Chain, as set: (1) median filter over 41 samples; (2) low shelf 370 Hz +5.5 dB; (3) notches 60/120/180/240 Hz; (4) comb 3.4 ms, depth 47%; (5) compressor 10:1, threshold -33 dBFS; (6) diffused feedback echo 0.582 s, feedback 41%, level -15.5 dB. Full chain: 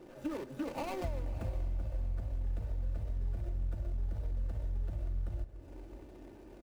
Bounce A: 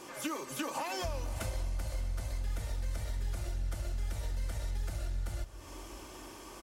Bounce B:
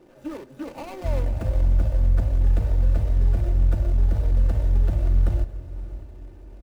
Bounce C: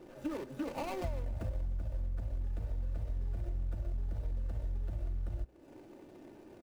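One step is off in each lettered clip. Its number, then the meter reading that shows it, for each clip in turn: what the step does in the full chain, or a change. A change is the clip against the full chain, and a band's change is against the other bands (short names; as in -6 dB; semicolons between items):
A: 1, 4 kHz band +12.0 dB; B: 5, mean gain reduction 12.5 dB; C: 6, echo-to-direct -14.5 dB to none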